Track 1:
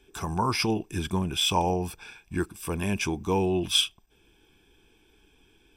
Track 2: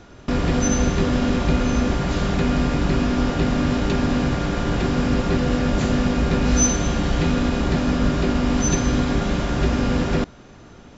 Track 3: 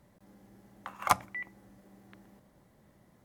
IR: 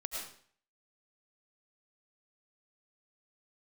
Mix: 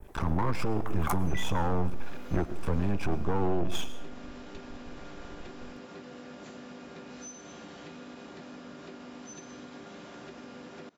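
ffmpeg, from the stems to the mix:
-filter_complex "[0:a]aemphasis=mode=reproduction:type=riaa,aeval=exprs='max(val(0),0)':channel_layout=same,volume=0dB,asplit=2[link_01][link_02];[link_02]volume=-10.5dB[link_03];[1:a]highpass=260,acompressor=threshold=-33dB:ratio=4,adelay=650,volume=-11.5dB[link_04];[2:a]highshelf=frequency=5200:gain=11.5,volume=-3dB,asplit=2[link_05][link_06];[link_06]volume=-21.5dB[link_07];[link_01][link_05]amix=inputs=2:normalize=0,equalizer=frequency=1000:width=0.53:gain=8,alimiter=limit=-14.5dB:level=0:latency=1:release=13,volume=0dB[link_08];[3:a]atrim=start_sample=2205[link_09];[link_03][link_07]amix=inputs=2:normalize=0[link_10];[link_10][link_09]afir=irnorm=-1:irlink=0[link_11];[link_04][link_08][link_11]amix=inputs=3:normalize=0,adynamicequalizer=threshold=0.00316:dfrequency=4100:dqfactor=0.77:tfrequency=4100:tqfactor=0.77:attack=5:release=100:ratio=0.375:range=2:mode=cutabove:tftype=bell,alimiter=limit=-17dB:level=0:latency=1:release=309"

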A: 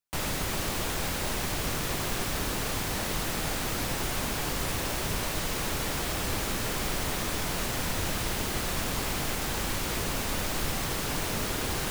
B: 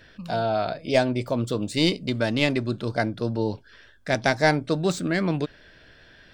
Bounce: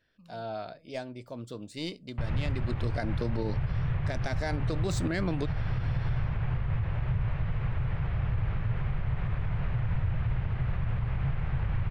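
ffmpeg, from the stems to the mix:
ffmpeg -i stem1.wav -i stem2.wav -filter_complex "[0:a]lowpass=frequency=2400:width=0.5412,lowpass=frequency=2400:width=1.3066,lowshelf=frequency=180:width_type=q:width=3:gain=13,adelay=2050,volume=-7dB[link_01];[1:a]dynaudnorm=framelen=100:gausssize=7:maxgain=14dB,volume=-10.5dB,afade=type=in:start_time=2.43:duration=0.5:silence=0.266073[link_02];[link_01][link_02]amix=inputs=2:normalize=0,alimiter=limit=-21dB:level=0:latency=1:release=71" out.wav

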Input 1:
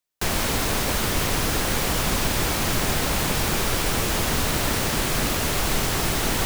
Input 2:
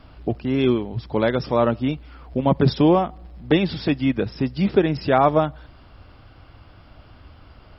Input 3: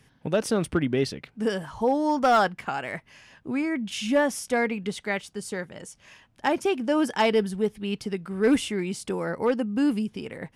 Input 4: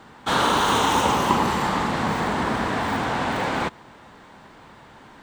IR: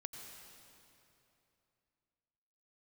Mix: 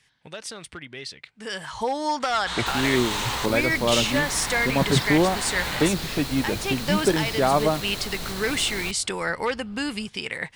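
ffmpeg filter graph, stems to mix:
-filter_complex "[0:a]alimiter=limit=-13.5dB:level=0:latency=1:release=109,equalizer=frequency=4100:width_type=o:width=0.29:gain=10.5,adelay=2450,volume=-10dB[link_01];[1:a]adelay=2300,volume=-4dB[link_02];[2:a]acompressor=threshold=-26dB:ratio=2,afade=type=in:start_time=1.34:duration=0.51:silence=0.237137[link_03];[3:a]asoftclip=type=tanh:threshold=-19dB,adelay=2200,volume=-12dB,asplit=3[link_04][link_05][link_06];[link_04]atrim=end=3.46,asetpts=PTS-STARTPTS,afade=type=out:start_time=3.456:duration=0.004:curve=hsin[link_07];[link_05]atrim=start=3.46:end=4.04,asetpts=PTS-STARTPTS,volume=0[link_08];[link_06]atrim=start=4.04,asetpts=PTS-STARTPTS,afade=type=in:duration=0.004:curve=hsin[link_09];[link_07][link_08][link_09]concat=n=3:v=0:a=1[link_10];[link_03][link_10]amix=inputs=2:normalize=0,equalizer=frequency=250:width_type=o:width=1:gain=-5,equalizer=frequency=1000:width_type=o:width=1:gain=4,equalizer=frequency=2000:width_type=o:width=1:gain=10,equalizer=frequency=4000:width_type=o:width=1:gain=12,equalizer=frequency=8000:width_type=o:width=1:gain=12,alimiter=limit=-13dB:level=0:latency=1:release=460,volume=0dB[link_11];[link_01][link_02][link_11]amix=inputs=3:normalize=0"

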